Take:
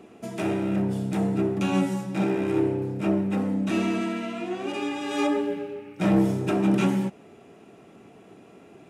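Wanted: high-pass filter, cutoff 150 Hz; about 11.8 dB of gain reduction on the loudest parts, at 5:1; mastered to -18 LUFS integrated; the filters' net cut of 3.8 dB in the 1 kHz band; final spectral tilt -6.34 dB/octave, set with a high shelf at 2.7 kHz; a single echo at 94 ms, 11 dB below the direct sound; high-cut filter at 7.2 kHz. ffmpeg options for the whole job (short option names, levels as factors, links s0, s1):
-af "highpass=150,lowpass=7200,equalizer=f=1000:t=o:g=-4.5,highshelf=f=2700:g=-5.5,acompressor=threshold=0.0251:ratio=5,aecho=1:1:94:0.282,volume=7.5"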